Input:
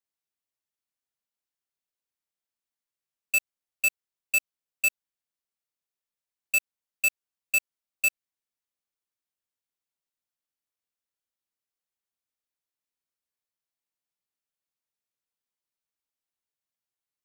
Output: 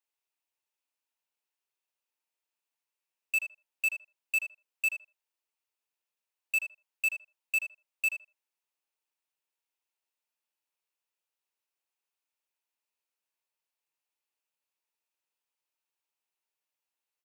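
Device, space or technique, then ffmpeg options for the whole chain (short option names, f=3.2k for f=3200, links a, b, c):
laptop speaker: -filter_complex "[0:a]highpass=f=320:w=0.5412,highpass=f=320:w=1.3066,equalizer=f=910:t=o:w=0.21:g=7,equalizer=f=2.6k:t=o:w=0.29:g=7.5,alimiter=limit=-22.5dB:level=0:latency=1:release=100,asplit=2[a][b];[b]adelay=80,lowpass=f=1.8k:p=1,volume=-5dB,asplit=2[c][d];[d]adelay=80,lowpass=f=1.8k:p=1,volume=0.19,asplit=2[e][f];[f]adelay=80,lowpass=f=1.8k:p=1,volume=0.19[g];[a][c][e][g]amix=inputs=4:normalize=0"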